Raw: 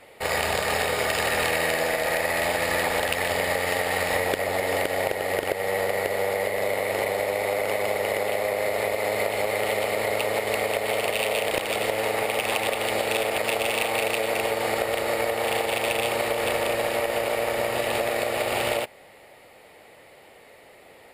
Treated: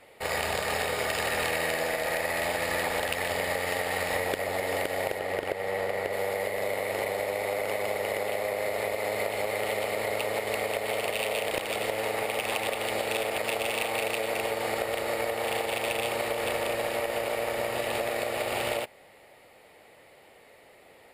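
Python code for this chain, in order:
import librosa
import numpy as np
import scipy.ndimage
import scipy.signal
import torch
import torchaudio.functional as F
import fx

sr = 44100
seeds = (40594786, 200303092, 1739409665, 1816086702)

y = fx.high_shelf(x, sr, hz=5500.0, db=-8.0, at=(5.19, 6.13))
y = y * librosa.db_to_amplitude(-4.5)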